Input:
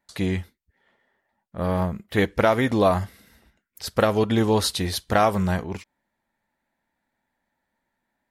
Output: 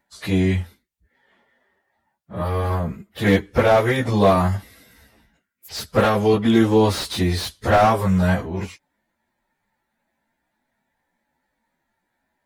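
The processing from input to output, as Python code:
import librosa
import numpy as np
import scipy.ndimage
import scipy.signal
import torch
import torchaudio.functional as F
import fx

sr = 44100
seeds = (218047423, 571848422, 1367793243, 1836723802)

y = fx.stretch_vocoder_free(x, sr, factor=1.5)
y = fx.slew_limit(y, sr, full_power_hz=110.0)
y = F.gain(torch.from_numpy(y), 6.5).numpy()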